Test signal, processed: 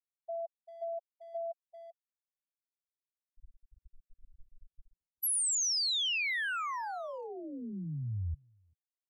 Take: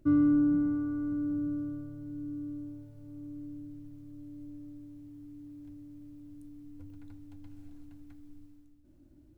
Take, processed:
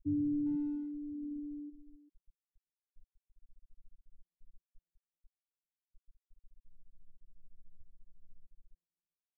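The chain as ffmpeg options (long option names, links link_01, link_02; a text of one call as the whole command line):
ffmpeg -i in.wav -filter_complex "[0:a]acompressor=mode=upward:threshold=-41dB:ratio=2.5,equalizer=frequency=380:width=0.39:gain=-11.5,afftfilt=real='re*gte(hypot(re,im),0.0562)':imag='im*gte(hypot(re,im),0.0562)':win_size=1024:overlap=0.75,asplit=2[link_01][link_02];[link_02]adelay=390,highpass=300,lowpass=3400,asoftclip=type=hard:threshold=-37dB,volume=-12dB[link_03];[link_01][link_03]amix=inputs=2:normalize=0,volume=2dB" out.wav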